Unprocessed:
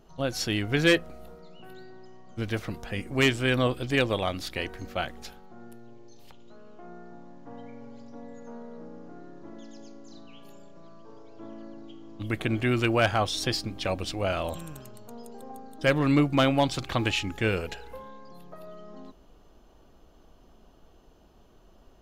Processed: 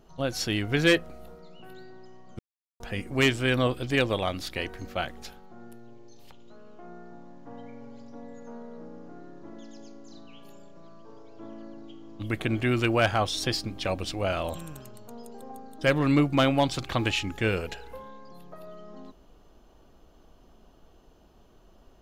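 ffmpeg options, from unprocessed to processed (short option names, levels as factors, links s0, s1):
-filter_complex "[0:a]asplit=3[s0][s1][s2];[s0]atrim=end=2.39,asetpts=PTS-STARTPTS,afade=t=out:st=2.386:d=0.004:c=hsin[s3];[s1]atrim=start=2.39:end=2.8,asetpts=PTS-STARTPTS,volume=0[s4];[s2]atrim=start=2.8,asetpts=PTS-STARTPTS,afade=t=in:d=0.004:c=hsin[s5];[s3][s4][s5]concat=n=3:v=0:a=1"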